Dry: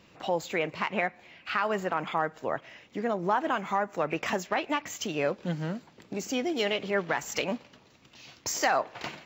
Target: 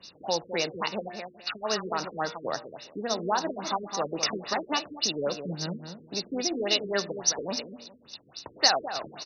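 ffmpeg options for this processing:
-filter_complex "[0:a]lowshelf=f=210:g=-5.5,bandreject=f=118.5:t=h:w=4,bandreject=f=237:t=h:w=4,bandreject=f=355.5:t=h:w=4,bandreject=f=474:t=h:w=4,bandreject=f=592.5:t=h:w=4,bandreject=f=711:t=h:w=4,bandreject=f=829.5:t=h:w=4,bandreject=f=948:t=h:w=4,bandreject=f=1.0665k:t=h:w=4,bandreject=f=1.185k:t=h:w=4,bandreject=f=1.3035k:t=h:w=4,bandreject=f=1.422k:t=h:w=4,bandreject=f=1.5405k:t=h:w=4,bandreject=f=1.659k:t=h:w=4,bandreject=f=1.7775k:t=h:w=4,bandreject=f=1.896k:t=h:w=4,bandreject=f=2.0145k:t=h:w=4,bandreject=f=2.133k:t=h:w=4,bandreject=f=2.2515k:t=h:w=4,bandreject=f=2.37k:t=h:w=4,bandreject=f=2.4885k:t=h:w=4,bandreject=f=2.607k:t=h:w=4,bandreject=f=2.7255k:t=h:w=4,bandreject=f=2.844k:t=h:w=4,bandreject=f=2.9625k:t=h:w=4,bandreject=f=3.081k:t=h:w=4,bandreject=f=3.1995k:t=h:w=4,bandreject=f=3.318k:t=h:w=4,bandreject=f=3.4365k:t=h:w=4,acrossover=split=110|940[a][b][c];[b]acrusher=bits=4:mode=log:mix=0:aa=0.000001[d];[a][d][c]amix=inputs=3:normalize=0,aexciter=amount=8.6:drive=9.9:freq=3.6k,asuperstop=centerf=3200:order=8:qfactor=5.9,asplit=2[e][f];[f]adelay=207,lowpass=f=1.8k:p=1,volume=-8dB,asplit=2[g][h];[h]adelay=207,lowpass=f=1.8k:p=1,volume=0.21,asplit=2[i][j];[j]adelay=207,lowpass=f=1.8k:p=1,volume=0.21[k];[g][i][k]amix=inputs=3:normalize=0[l];[e][l]amix=inputs=2:normalize=0,afftfilt=real='re*lt(b*sr/1024,480*pow(6500/480,0.5+0.5*sin(2*PI*3.6*pts/sr)))':imag='im*lt(b*sr/1024,480*pow(6500/480,0.5+0.5*sin(2*PI*3.6*pts/sr)))':win_size=1024:overlap=0.75"

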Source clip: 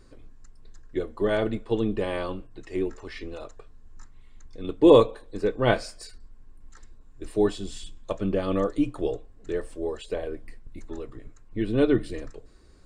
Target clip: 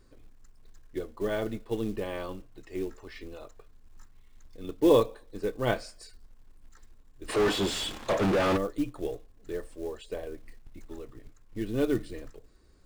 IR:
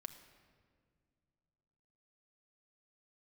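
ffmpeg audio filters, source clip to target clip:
-filter_complex "[0:a]acrusher=bits=6:mode=log:mix=0:aa=0.000001,asplit=3[a][b][c];[a]afade=t=out:st=7.28:d=0.02[d];[b]asplit=2[e][f];[f]highpass=f=720:p=1,volume=38dB,asoftclip=type=tanh:threshold=-11.5dB[g];[e][g]amix=inputs=2:normalize=0,lowpass=f=1.9k:p=1,volume=-6dB,afade=t=in:st=7.28:d=0.02,afade=t=out:st=8.56:d=0.02[h];[c]afade=t=in:st=8.56:d=0.02[i];[d][h][i]amix=inputs=3:normalize=0,volume=-6dB"

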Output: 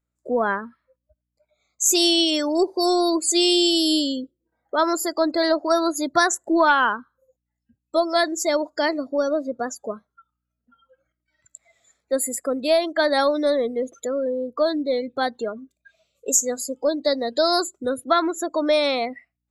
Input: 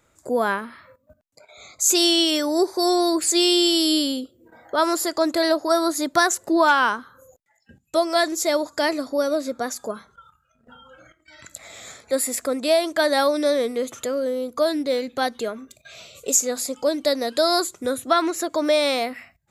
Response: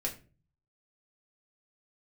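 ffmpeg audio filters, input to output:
-af "aeval=exprs='val(0)+0.002*(sin(2*PI*60*n/s)+sin(2*PI*2*60*n/s)/2+sin(2*PI*3*60*n/s)/3+sin(2*PI*4*60*n/s)/4+sin(2*PI*5*60*n/s)/5)':c=same,afftdn=nr=27:nf=-30,aeval=exprs='0.562*(cos(1*acos(clip(val(0)/0.562,-1,1)))-cos(1*PI/2))+0.00501*(cos(4*acos(clip(val(0)/0.562,-1,1)))-cos(4*PI/2))':c=same"

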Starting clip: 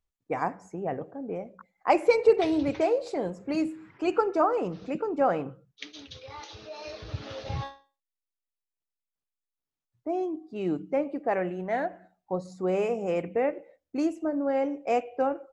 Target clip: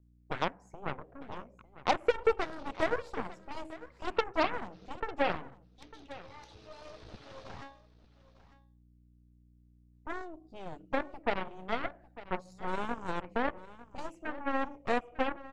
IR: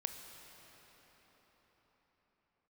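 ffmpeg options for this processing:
-filter_complex "[0:a]aeval=exprs='val(0)+0.002*(sin(2*PI*60*n/s)+sin(2*PI*2*60*n/s)/2+sin(2*PI*3*60*n/s)/3+sin(2*PI*4*60*n/s)/4+sin(2*PI*5*60*n/s)/5)':c=same,acrossover=split=480|1400[a][b][c];[a]acompressor=threshold=-39dB:ratio=4[d];[b]acompressor=threshold=-26dB:ratio=4[e];[c]acompressor=threshold=-50dB:ratio=4[f];[d][e][f]amix=inputs=3:normalize=0,aeval=exprs='0.178*(cos(1*acos(clip(val(0)/0.178,-1,1)))-cos(1*PI/2))+0.0355*(cos(7*acos(clip(val(0)/0.178,-1,1)))-cos(7*PI/2))+0.0158*(cos(8*acos(clip(val(0)/0.178,-1,1)))-cos(8*PI/2))':c=same,asplit=2[g][h];[h]aecho=0:1:900:0.141[i];[g][i]amix=inputs=2:normalize=0"

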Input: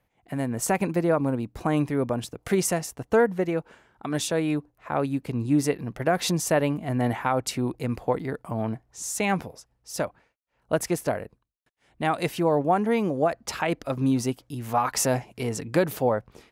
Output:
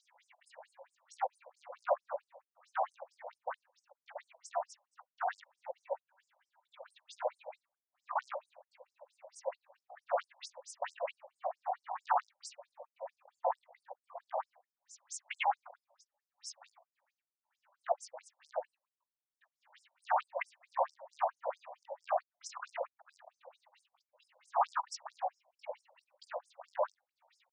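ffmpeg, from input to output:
-filter_complex "[0:a]afwtdn=0.0398,highshelf=f=7k:g=-3,afftfilt=real='hypot(re,im)*cos(2*PI*random(0))':imag='hypot(re,im)*sin(2*PI*random(1))':win_size=512:overlap=0.75,asplit=2[a][b];[b]acompressor=threshold=-40dB:ratio=12,volume=2.5dB[c];[a][c]amix=inputs=2:normalize=0,alimiter=limit=-21dB:level=0:latency=1:release=59,acrossover=split=300|3100[d][e][f];[e]volume=25.5dB,asoftclip=hard,volume=-25.5dB[g];[d][g][f]amix=inputs=3:normalize=0,acompressor=mode=upward:threshold=-40dB:ratio=2.5,atempo=0.6,afftfilt=real='re*between(b*sr/1024,710*pow(7100/710,0.5+0.5*sin(2*PI*4.5*pts/sr))/1.41,710*pow(7100/710,0.5+0.5*sin(2*PI*4.5*pts/sr))*1.41)':imag='im*between(b*sr/1024,710*pow(7100/710,0.5+0.5*sin(2*PI*4.5*pts/sr))/1.41,710*pow(7100/710,0.5+0.5*sin(2*PI*4.5*pts/sr))*1.41)':win_size=1024:overlap=0.75,volume=5dB"

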